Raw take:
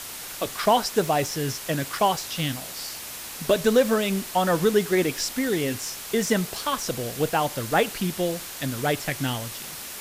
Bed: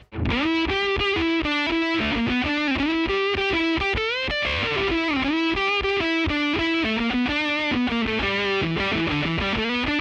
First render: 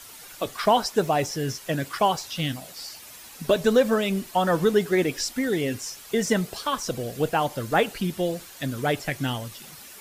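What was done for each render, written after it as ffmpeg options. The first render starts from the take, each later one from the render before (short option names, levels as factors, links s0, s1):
-af "afftdn=nr=10:nf=-37"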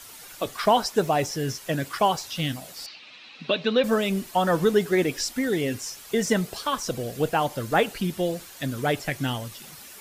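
-filter_complex "[0:a]asettb=1/sr,asplit=3[s0][s1][s2];[s0]atrim=end=2.864[s3];[s1]atrim=start=2.86:end=3.84,asetpts=PTS-STARTPTS,afade=t=in:d=0.004:c=qsin,afade=t=out:st=0.976:d=0.004:c=qsin,highpass=220,equalizer=f=400:t=q:w=4:g=-7,equalizer=f=650:t=q:w=4:g=-5,equalizer=f=920:t=q:w=4:g=-5,equalizer=f=1600:t=q:w=4:g=-3,equalizer=f=2600:t=q:w=4:g=8,equalizer=f=3900:t=q:w=4:g=7,lowpass=f=4100:w=0.5412,lowpass=f=4100:w=1.3066[s4];[s2]atrim=start=3.836[s5];[s3][s4]acrossfade=d=0.004:c1=hsin:c2=qsin[s6];[s6][s5]acrossfade=d=0.004:c1=qsin:c2=hsin"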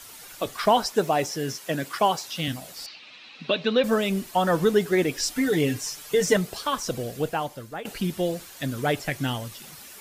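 -filter_complex "[0:a]asettb=1/sr,asplit=3[s0][s1][s2];[s0]atrim=end=0.934[s3];[s1]atrim=start=0.93:end=2.48,asetpts=PTS-STARTPTS,afade=t=in:d=0.004:c=qsin,afade=t=out:st=1.546:d=0.004:c=qsin,highpass=160[s4];[s2]atrim=start=2.476[s5];[s3][s4]acrossfade=d=0.004:c1=hsin:c2=qsin[s6];[s6][s5]acrossfade=d=0.004:c1=qsin:c2=hsin,asettb=1/sr,asplit=3[s7][s8][s9];[s7]atrim=end=5.224[s10];[s8]atrim=start=5.22:end=6.37,asetpts=PTS-STARTPTS,afade=t=in:d=0.004:c=qsin,afade=t=out:st=1.146:d=0.004:c=qsin,aecho=1:1:6.7:0.82,atrim=end_sample=50715[s11];[s9]atrim=start=6.366[s12];[s10][s11]acrossfade=d=0.004:c1=hsin:c2=qsin[s13];[s13][s12]acrossfade=d=0.004:c1=qsin:c2=hsin,asplit=2[s14][s15];[s14]atrim=end=7.85,asetpts=PTS-STARTPTS,afade=t=out:st=7.01:d=0.84:silence=0.11885[s16];[s15]atrim=start=7.85,asetpts=PTS-STARTPTS,afade=t=in:d=0.004:c=hsin:silence=0.11885[s17];[s16][s17]concat=n=2:v=0:a=1"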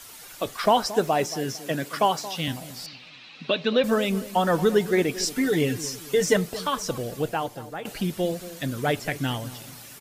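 -filter_complex "[0:a]asplit=2[s0][s1];[s1]adelay=226,lowpass=f=1100:p=1,volume=0.2,asplit=2[s2][s3];[s3]adelay=226,lowpass=f=1100:p=1,volume=0.39,asplit=2[s4][s5];[s5]adelay=226,lowpass=f=1100:p=1,volume=0.39,asplit=2[s6][s7];[s7]adelay=226,lowpass=f=1100:p=1,volume=0.39[s8];[s0][s2][s4][s6][s8]amix=inputs=5:normalize=0"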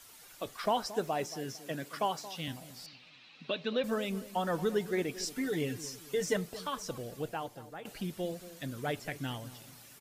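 -af "volume=0.299"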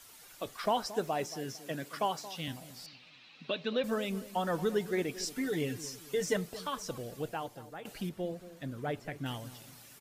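-filter_complex "[0:a]asettb=1/sr,asplit=3[s0][s1][s2];[s0]atrim=end=8.094[s3];[s1]atrim=start=8.09:end=9.26,asetpts=PTS-STARTPTS,afade=t=in:d=0.004:c=qsin,afade=t=out:st=1.166:d=0.004:c=qsin,highshelf=f=2600:g=-11[s4];[s2]atrim=start=9.256[s5];[s3][s4]acrossfade=d=0.004:c1=hsin:c2=qsin[s6];[s6][s5]acrossfade=d=0.004:c1=qsin:c2=hsin"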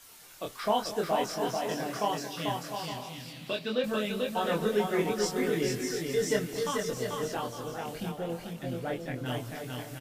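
-filter_complex "[0:a]asplit=2[s0][s1];[s1]adelay=24,volume=0.794[s2];[s0][s2]amix=inputs=2:normalize=0,aecho=1:1:440|704|862.4|957.4|1014:0.631|0.398|0.251|0.158|0.1"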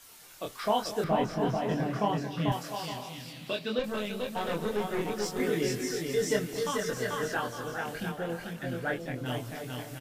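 -filter_complex "[0:a]asettb=1/sr,asplit=3[s0][s1][s2];[s0]atrim=end=1.044[s3];[s1]atrim=start=1.04:end=2.52,asetpts=PTS-STARTPTS,afade=t=in:d=0.004:c=qsin,afade=t=out:st=1.476:d=0.004:c=qsin,bass=f=250:g=12,treble=f=4000:g=-12[s4];[s2]atrim=start=2.516[s5];[s3][s4]acrossfade=d=0.004:c1=hsin:c2=qsin[s6];[s6][s5]acrossfade=d=0.004:c1=qsin:c2=hsin,asettb=1/sr,asplit=3[s7][s8][s9];[s7]atrim=end=3.794[s10];[s8]atrim=start=3.79:end=5.4,asetpts=PTS-STARTPTS,afade=t=in:d=0.004:c=qsin,afade=t=out:st=1.606:d=0.004:c=qsin,aeval=exprs='(tanh(15.8*val(0)+0.55)-tanh(0.55))/15.8':c=same[s11];[s9]atrim=start=5.396[s12];[s10][s11]acrossfade=d=0.004:c1=hsin:c2=qsin[s13];[s13][s12]acrossfade=d=0.004:c1=qsin:c2=hsin,asettb=1/sr,asplit=3[s14][s15][s16];[s14]atrim=end=6.824[s17];[s15]atrim=start=6.82:end=8.99,asetpts=PTS-STARTPTS,afade=t=in:d=0.004:c=qsin,afade=t=out:st=2.166:d=0.004:c=qsin,equalizer=f=1600:w=3.4:g=13[s18];[s16]atrim=start=8.986[s19];[s17][s18]acrossfade=d=0.004:c1=hsin:c2=qsin[s20];[s20][s19]acrossfade=d=0.004:c1=qsin:c2=hsin"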